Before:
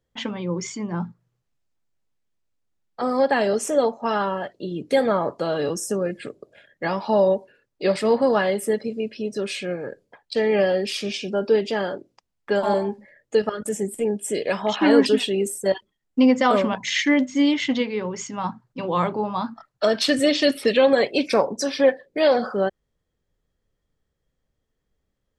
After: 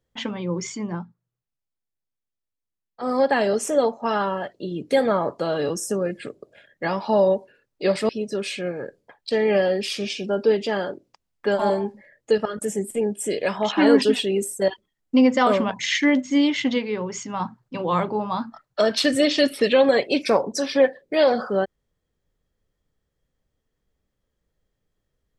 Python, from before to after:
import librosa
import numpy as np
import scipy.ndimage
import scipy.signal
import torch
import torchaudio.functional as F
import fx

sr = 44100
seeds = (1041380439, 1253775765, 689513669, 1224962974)

y = fx.edit(x, sr, fx.fade_down_up(start_s=0.92, length_s=2.18, db=-12.0, fade_s=0.12),
    fx.cut(start_s=8.09, length_s=1.04), tone=tone)